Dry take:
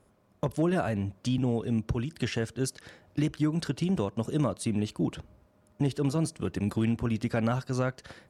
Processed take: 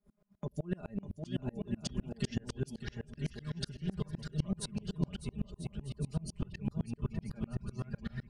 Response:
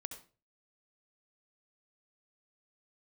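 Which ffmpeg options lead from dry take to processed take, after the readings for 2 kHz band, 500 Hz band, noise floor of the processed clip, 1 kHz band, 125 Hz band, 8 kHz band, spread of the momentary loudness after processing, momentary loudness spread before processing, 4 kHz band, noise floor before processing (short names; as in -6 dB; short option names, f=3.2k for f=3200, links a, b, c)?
-12.0 dB, -13.0 dB, -67 dBFS, -16.0 dB, -7.5 dB, -7.5 dB, 4 LU, 5 LU, -6.0 dB, -64 dBFS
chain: -filter_complex "[0:a]asplit=2[a][b];[b]lowpass=f=8.9k:w=0.5412,lowpass=f=8.9k:w=1.3066[c];[1:a]atrim=start_sample=2205[d];[c][d]afir=irnorm=-1:irlink=0,volume=-13.5dB[e];[a][e]amix=inputs=2:normalize=0,asubboost=boost=12:cutoff=78,bandreject=f=50:t=h:w=6,bandreject=f=100:t=h:w=6,acompressor=threshold=-35dB:ratio=6,aecho=1:1:4.9:0.77,acrossover=split=470|3000[f][g][h];[g]acompressor=threshold=-50dB:ratio=4[i];[f][i][h]amix=inputs=3:normalize=0,equalizer=f=450:t=o:w=1.7:g=-3,afftdn=nr=16:nf=-52,aecho=1:1:600|990|1244|1408|1515:0.631|0.398|0.251|0.158|0.1,aeval=exprs='val(0)*pow(10,-32*if(lt(mod(-7.9*n/s,1),2*abs(-7.9)/1000),1-mod(-7.9*n/s,1)/(2*abs(-7.9)/1000),(mod(-7.9*n/s,1)-2*abs(-7.9)/1000)/(1-2*abs(-7.9)/1000))/20)':c=same,volume=8dB"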